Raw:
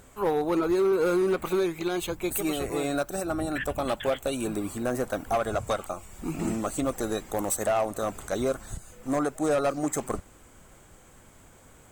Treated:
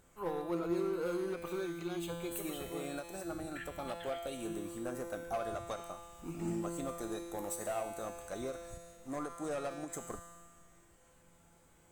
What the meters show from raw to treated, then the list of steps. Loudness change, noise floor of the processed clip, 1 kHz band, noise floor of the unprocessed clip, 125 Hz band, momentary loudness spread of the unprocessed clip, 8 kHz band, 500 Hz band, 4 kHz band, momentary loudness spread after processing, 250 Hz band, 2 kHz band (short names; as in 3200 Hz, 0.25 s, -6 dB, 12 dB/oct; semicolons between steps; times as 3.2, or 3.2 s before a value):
-11.5 dB, -65 dBFS, -11.5 dB, -54 dBFS, -10.0 dB, 8 LU, -11.0 dB, -12.0 dB, -11.0 dB, 8 LU, -11.0 dB, -11.5 dB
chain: resonator 170 Hz, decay 1.8 s, mix 90%; ending taper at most 200 dB/s; gain +5.5 dB